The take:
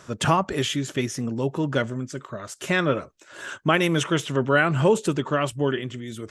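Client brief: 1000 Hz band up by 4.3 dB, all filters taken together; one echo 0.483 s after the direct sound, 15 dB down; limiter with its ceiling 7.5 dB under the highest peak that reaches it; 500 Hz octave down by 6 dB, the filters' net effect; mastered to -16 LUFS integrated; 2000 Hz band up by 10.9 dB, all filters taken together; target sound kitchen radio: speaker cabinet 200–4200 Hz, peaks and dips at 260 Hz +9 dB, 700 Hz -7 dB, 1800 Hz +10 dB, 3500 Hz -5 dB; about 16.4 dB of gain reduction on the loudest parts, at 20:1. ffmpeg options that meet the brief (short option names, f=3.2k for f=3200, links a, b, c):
-af "equalizer=f=500:t=o:g=-8.5,equalizer=f=1k:t=o:g=5,equalizer=f=2k:t=o:g=6,acompressor=threshold=-28dB:ratio=20,alimiter=limit=-23.5dB:level=0:latency=1,highpass=200,equalizer=f=260:t=q:w=4:g=9,equalizer=f=700:t=q:w=4:g=-7,equalizer=f=1.8k:t=q:w=4:g=10,equalizer=f=3.5k:t=q:w=4:g=-5,lowpass=f=4.2k:w=0.5412,lowpass=f=4.2k:w=1.3066,aecho=1:1:483:0.178,volume=16.5dB"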